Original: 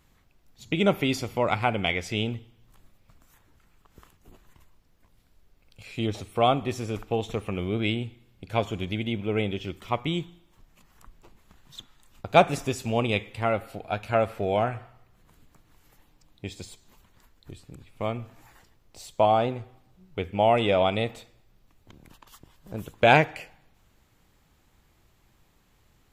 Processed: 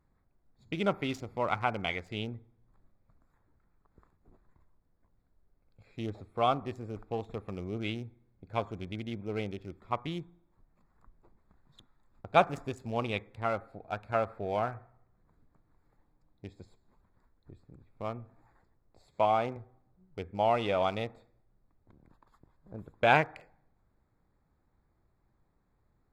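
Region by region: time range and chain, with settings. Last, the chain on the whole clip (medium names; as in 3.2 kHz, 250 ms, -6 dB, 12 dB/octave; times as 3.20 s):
19.08–19.57 s: high-pass 76 Hz + peaking EQ 2.2 kHz +8.5 dB 0.33 oct + upward compressor, threshold -39 dBFS
whole clip: local Wiener filter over 15 samples; dynamic bell 1.2 kHz, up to +7 dB, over -37 dBFS, Q 1.2; trim -8.5 dB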